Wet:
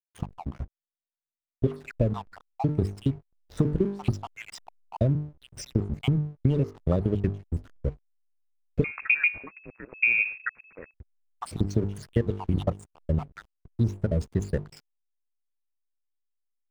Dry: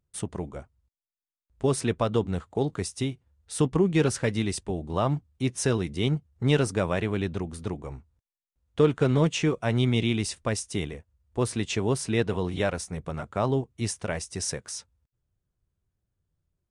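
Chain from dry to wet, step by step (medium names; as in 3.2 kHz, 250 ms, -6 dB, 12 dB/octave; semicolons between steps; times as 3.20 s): random holes in the spectrogram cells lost 72%; tilt EQ -3 dB/octave; hum notches 50/100/150/200/250/300/350/400/450 Hz; compression 10:1, threshold -25 dBFS, peak gain reduction 13.5 dB; hysteresis with a dead band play -42 dBFS; 8.84–10.94 s: frequency inversion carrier 2.6 kHz; trim +5.5 dB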